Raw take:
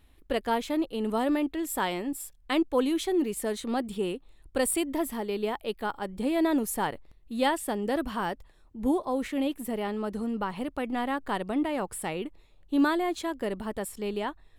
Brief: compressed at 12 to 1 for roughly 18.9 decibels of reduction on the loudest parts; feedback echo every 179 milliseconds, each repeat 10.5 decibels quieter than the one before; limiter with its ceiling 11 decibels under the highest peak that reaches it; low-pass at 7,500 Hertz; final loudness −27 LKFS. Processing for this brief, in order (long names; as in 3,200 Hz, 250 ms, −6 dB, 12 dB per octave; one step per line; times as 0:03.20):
low-pass filter 7,500 Hz
downward compressor 12 to 1, threshold −40 dBFS
brickwall limiter −36.5 dBFS
repeating echo 179 ms, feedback 30%, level −10.5 dB
level +19 dB